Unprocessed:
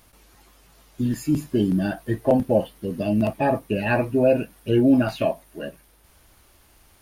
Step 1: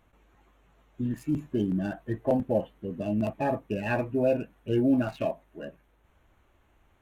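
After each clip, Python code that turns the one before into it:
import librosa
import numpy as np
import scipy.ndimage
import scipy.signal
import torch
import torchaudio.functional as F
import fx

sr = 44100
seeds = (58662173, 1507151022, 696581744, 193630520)

y = fx.wiener(x, sr, points=9)
y = F.gain(torch.from_numpy(y), -6.5).numpy()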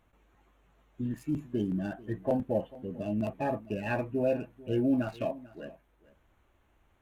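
y = x + 10.0 ** (-20.0 / 20.0) * np.pad(x, (int(443 * sr / 1000.0), 0))[:len(x)]
y = F.gain(torch.from_numpy(y), -3.5).numpy()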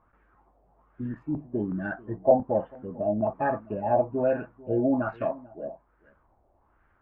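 y = fx.filter_lfo_lowpass(x, sr, shape='sine', hz=1.2, low_hz=690.0, high_hz=1600.0, q=3.4)
y = fx.dynamic_eq(y, sr, hz=890.0, q=0.91, threshold_db=-38.0, ratio=4.0, max_db=4)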